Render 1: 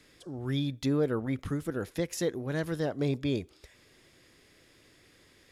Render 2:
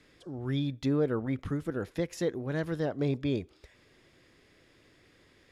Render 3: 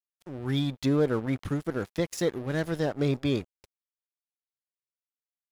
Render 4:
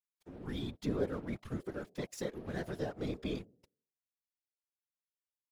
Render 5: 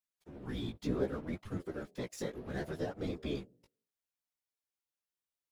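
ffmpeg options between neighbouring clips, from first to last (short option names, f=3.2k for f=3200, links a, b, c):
-af "lowpass=f=3.3k:p=1"
-af "highshelf=f=4.5k:g=8.5,aeval=exprs='sgn(val(0))*max(abs(val(0))-0.00531,0)':c=same,volume=4dB"
-af "bandreject=f=216.3:t=h:w=4,bandreject=f=432.6:t=h:w=4,bandreject=f=648.9:t=h:w=4,afftfilt=real='hypot(re,im)*cos(2*PI*random(0))':imag='hypot(re,im)*sin(2*PI*random(1))':win_size=512:overlap=0.75,volume=-4.5dB"
-af "flanger=delay=9.9:depth=8.7:regen=3:speed=0.67:shape=triangular,volume=3dB"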